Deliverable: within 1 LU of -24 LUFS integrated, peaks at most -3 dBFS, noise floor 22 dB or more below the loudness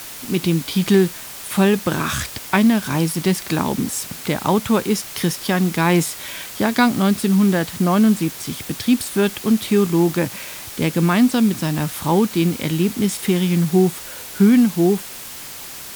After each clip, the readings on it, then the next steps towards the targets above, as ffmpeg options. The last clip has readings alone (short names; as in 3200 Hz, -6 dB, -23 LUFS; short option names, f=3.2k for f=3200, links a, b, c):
noise floor -34 dBFS; noise floor target -41 dBFS; loudness -18.5 LUFS; peak -1.5 dBFS; loudness target -24.0 LUFS
-> -af "afftdn=nr=7:nf=-34"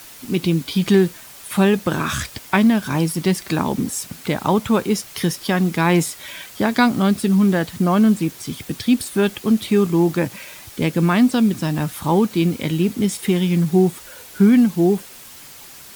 noise floor -41 dBFS; loudness -19.0 LUFS; peak -2.0 dBFS; loudness target -24.0 LUFS
-> -af "volume=-5dB"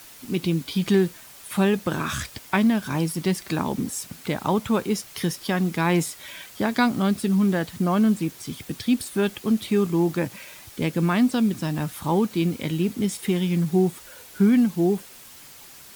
loudness -24.0 LUFS; peak -7.0 dBFS; noise floor -46 dBFS